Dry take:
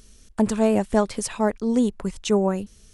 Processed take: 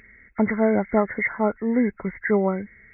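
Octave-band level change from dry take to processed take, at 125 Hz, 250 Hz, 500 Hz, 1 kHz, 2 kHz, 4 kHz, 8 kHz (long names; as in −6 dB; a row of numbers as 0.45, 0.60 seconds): −1.0 dB, −0.5 dB, 0.0 dB, 0.0 dB, +9.5 dB, below −40 dB, below −40 dB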